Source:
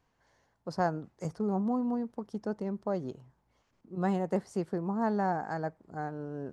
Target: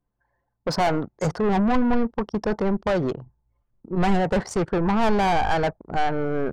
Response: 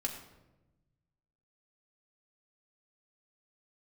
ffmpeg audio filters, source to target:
-filter_complex "[0:a]asplit=2[a][b];[b]highpass=f=720:p=1,volume=29dB,asoftclip=type=tanh:threshold=-15dB[c];[a][c]amix=inputs=2:normalize=0,lowpass=f=4.2k:p=1,volume=-6dB,lowshelf=f=200:g=5,anlmdn=3.98,asubboost=boost=3:cutoff=130,volume=1.5dB"

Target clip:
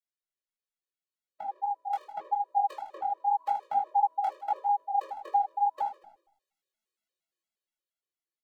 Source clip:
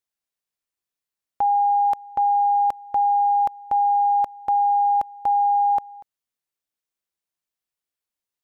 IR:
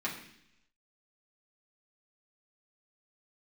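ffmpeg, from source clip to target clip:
-filter_complex "[0:a]asettb=1/sr,asplit=3[a][b][c];[a]atrim=end=3.844[d];[b]atrim=start=3.84:end=4.52,asetpts=PTS-STARTPTS,afade=t=in:d=0.004:c=qsin,afade=t=out:st=0.676:d=0.004:c=qsin,highpass=f=240:w=0.5412,highpass=f=240:w=1.3066[e];[c]atrim=start=4.516[f];[d][e]acrossfade=d=0.004:c1=hsin:c2=qsin[g];[g][f]acrossfade=d=0.004:c1=qsin:c2=hsin,acrossover=split=530[h][i];[h]acompressor=threshold=-50dB:ratio=6[j];[j][i]amix=inputs=2:normalize=0,aecho=1:1:78|156|234|312|390:0.316|0.149|0.0699|0.0328|0.0154,flanger=delay=16.5:depth=7.7:speed=0.83,dynaudnorm=f=280:g=13:m=11.5dB,flanger=delay=8.8:depth=5.9:regen=-59:speed=1.7:shape=sinusoidal[k];[1:a]atrim=start_sample=2205,asetrate=79380,aresample=44100[l];[k][l]afir=irnorm=-1:irlink=0,afftfilt=real='re*gt(sin(2*PI*4.3*pts/sr)*(1-2*mod(floor(b*sr/1024/320),2)),0)':imag='im*gt(sin(2*PI*4.3*pts/sr)*(1-2*mod(floor(b*sr/1024/320),2)),0)':win_size=1024:overlap=0.75"

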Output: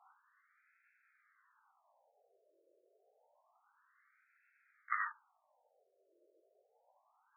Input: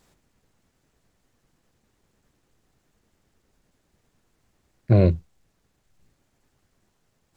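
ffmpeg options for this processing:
-af "highpass=f=230:t=q:w=0.5412,highpass=f=230:t=q:w=1.307,lowpass=f=2.7k:t=q:w=0.5176,lowpass=f=2.7k:t=q:w=0.7071,lowpass=f=2.7k:t=q:w=1.932,afreqshift=-220,flanger=delay=17:depth=6.3:speed=0.58,afftfilt=real='re*between(b*sr/1024,470*pow(1900/470,0.5+0.5*sin(2*PI*0.28*pts/sr))/1.41,470*pow(1900/470,0.5+0.5*sin(2*PI*0.28*pts/sr))*1.41)':imag='im*between(b*sr/1024,470*pow(1900/470,0.5+0.5*sin(2*PI*0.28*pts/sr))/1.41,470*pow(1900/470,0.5+0.5*sin(2*PI*0.28*pts/sr))*1.41)':win_size=1024:overlap=0.75,volume=11dB"

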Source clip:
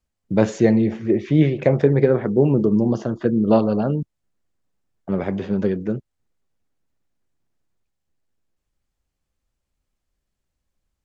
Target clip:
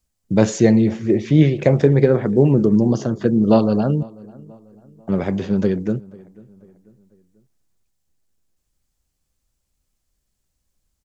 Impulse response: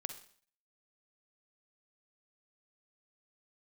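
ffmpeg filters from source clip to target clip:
-filter_complex "[0:a]bass=f=250:g=3,treble=f=4k:g=10,asplit=2[a][b];[b]adelay=492,lowpass=f=2.2k:p=1,volume=-23dB,asplit=2[c][d];[d]adelay=492,lowpass=f=2.2k:p=1,volume=0.45,asplit=2[e][f];[f]adelay=492,lowpass=f=2.2k:p=1,volume=0.45[g];[a][c][e][g]amix=inputs=4:normalize=0,volume=1dB"

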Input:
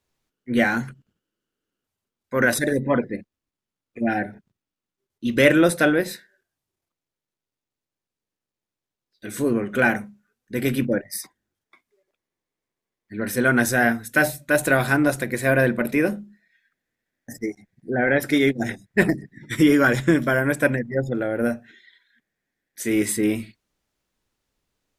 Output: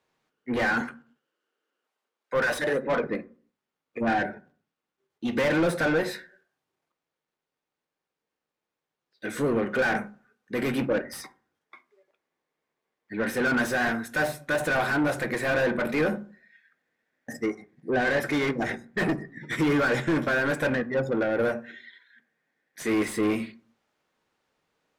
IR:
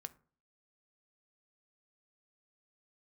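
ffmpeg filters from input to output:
-filter_complex "[0:a]asettb=1/sr,asplit=3[a][b][c];[a]atrim=end=0.814[d];[b]atrim=start=0.81:end=3.03,asetpts=PTS-STARTPTS,afade=t=in:d=0.004:c=qsin,afade=t=out:st=2.216:d=0.004:c=qsin,highpass=370[e];[c]atrim=start=3.026[f];[d][e]acrossfade=d=0.004:c1=hsin:c2=qsin[g];[g][f]acrossfade=d=0.004:c1=qsin:c2=hsin,asplit=2[h][i];[i]highpass=f=720:p=1,volume=30dB,asoftclip=type=tanh:threshold=-1.5dB[j];[h][j]amix=inputs=2:normalize=0,lowpass=f=1.3k:p=1,volume=-6dB[k];[1:a]atrim=start_sample=2205[l];[k][l]afir=irnorm=-1:irlink=0,volume=-8.5dB"

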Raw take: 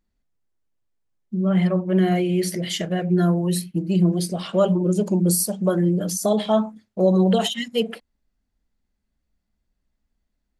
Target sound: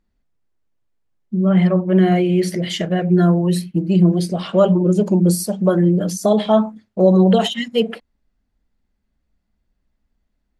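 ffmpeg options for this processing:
-af "lowpass=f=3.4k:p=1,volume=5dB"

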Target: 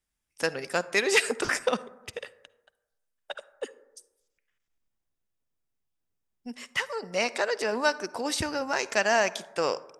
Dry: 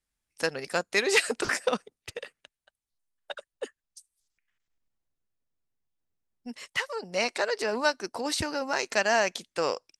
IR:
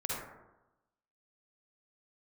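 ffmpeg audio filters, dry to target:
-filter_complex "[0:a]bandreject=f=4.2k:w=12,asplit=2[a][b];[1:a]atrim=start_sample=2205[c];[b][c]afir=irnorm=-1:irlink=0,volume=-20dB[d];[a][d]amix=inputs=2:normalize=0"

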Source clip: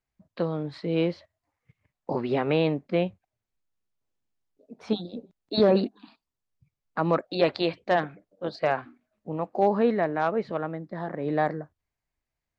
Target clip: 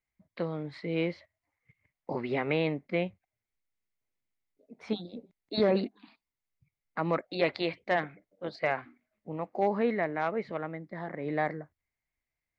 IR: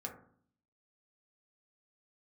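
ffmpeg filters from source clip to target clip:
-af "equalizer=f=2.1k:w=4.3:g=12,volume=-5.5dB"

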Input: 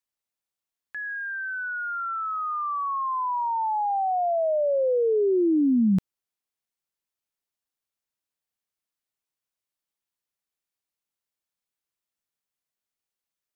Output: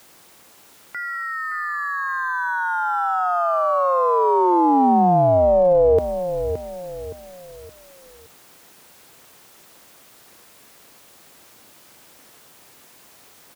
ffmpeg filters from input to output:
-filter_complex "[0:a]aeval=exprs='val(0)+0.5*0.00668*sgn(val(0))':c=same,tiltshelf=f=1.2k:g=4.5,aeval=exprs='val(0)*sin(2*PI*270*n/s)':c=same,aecho=1:1:569|1138|1707|2276:0.316|0.12|0.0457|0.0174,acrossover=split=270[a][b];[a]alimiter=level_in=0.5dB:limit=-24dB:level=0:latency=1,volume=-0.5dB[c];[c][b]amix=inputs=2:normalize=0,highpass=f=150:p=1,volume=7.5dB"

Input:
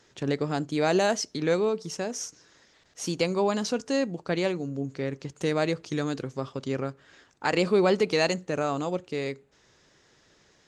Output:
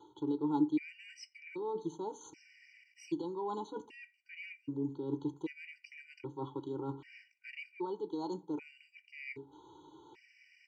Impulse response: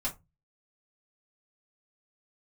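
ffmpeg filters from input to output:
-filter_complex "[0:a]acontrast=85,aecho=1:1:2.1:0.98,alimiter=limit=-9dB:level=0:latency=1:release=438,areverse,acompressor=threshold=-30dB:ratio=12,areverse,asplit=3[a][b][c];[a]bandpass=f=300:t=q:w=8,volume=0dB[d];[b]bandpass=f=870:t=q:w=8,volume=-6dB[e];[c]bandpass=f=2.24k:t=q:w=8,volume=-9dB[f];[d][e][f]amix=inputs=3:normalize=0,asplit=2[g][h];[h]adelay=88,lowpass=f=1.1k:p=1,volume=-21dB,asplit=2[i][j];[j]adelay=88,lowpass=f=1.1k:p=1,volume=0.37,asplit=2[k][l];[l]adelay=88,lowpass=f=1.1k:p=1,volume=0.37[m];[g][i][k][m]amix=inputs=4:normalize=0,asplit=2[n][o];[1:a]atrim=start_sample=2205,adelay=9[p];[o][p]afir=irnorm=-1:irlink=0,volume=-16.5dB[q];[n][q]amix=inputs=2:normalize=0,afftfilt=real='re*gt(sin(2*PI*0.64*pts/sr)*(1-2*mod(floor(b*sr/1024/1500),2)),0)':imag='im*gt(sin(2*PI*0.64*pts/sr)*(1-2*mod(floor(b*sr/1024/1500),2)),0)':win_size=1024:overlap=0.75,volume=11dB"

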